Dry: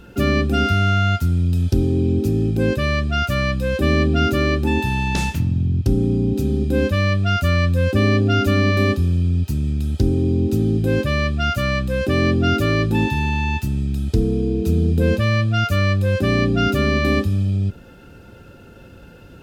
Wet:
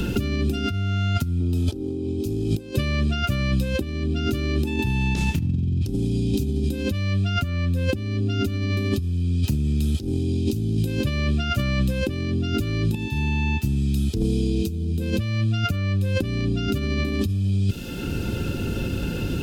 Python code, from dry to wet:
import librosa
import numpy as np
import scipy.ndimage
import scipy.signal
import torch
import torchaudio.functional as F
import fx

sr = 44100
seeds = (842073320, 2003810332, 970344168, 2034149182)

y = fx.band_shelf(x, sr, hz=600.0, db=9.5, octaves=2.5, at=(1.4, 2.76))
y = fx.edit(y, sr, fx.fade_in_from(start_s=12.95, length_s=2.02, floor_db=-20.5), tone=tone)
y = fx.over_compress(y, sr, threshold_db=-22.0, ratio=-0.5)
y = fx.band_shelf(y, sr, hz=980.0, db=-8.5, octaves=2.3)
y = fx.band_squash(y, sr, depth_pct=100)